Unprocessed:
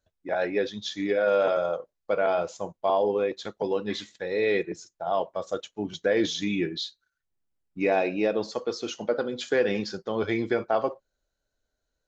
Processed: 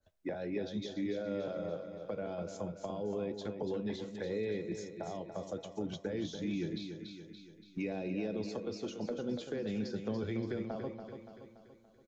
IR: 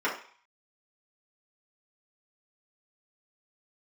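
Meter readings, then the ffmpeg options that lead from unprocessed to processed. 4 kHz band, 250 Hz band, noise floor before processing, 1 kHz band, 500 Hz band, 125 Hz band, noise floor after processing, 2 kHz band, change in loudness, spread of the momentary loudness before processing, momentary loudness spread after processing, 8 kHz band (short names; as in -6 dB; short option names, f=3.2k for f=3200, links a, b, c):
-13.5 dB, -6.0 dB, -82 dBFS, -17.5 dB, -13.0 dB, -1.5 dB, -60 dBFS, -16.5 dB, -11.5 dB, 9 LU, 9 LU, n/a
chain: -filter_complex "[0:a]acrossover=split=210|3000[a][b][c];[b]acompressor=threshold=-34dB:ratio=6[d];[a][d][c]amix=inputs=3:normalize=0,acrossover=split=450[e][f];[e]alimiter=level_in=8dB:limit=-24dB:level=0:latency=1,volume=-8dB[g];[f]acompressor=threshold=-47dB:ratio=10[h];[g][h]amix=inputs=2:normalize=0,aecho=1:1:286|572|858|1144|1430|1716:0.398|0.203|0.104|0.0528|0.0269|0.0137,asplit=2[i][j];[1:a]atrim=start_sample=2205[k];[j][k]afir=irnorm=-1:irlink=0,volume=-26dB[l];[i][l]amix=inputs=2:normalize=0,adynamicequalizer=threshold=0.00178:dfrequency=1800:dqfactor=0.7:tfrequency=1800:tqfactor=0.7:attack=5:release=100:ratio=0.375:range=2:mode=cutabove:tftype=highshelf,volume=2dB"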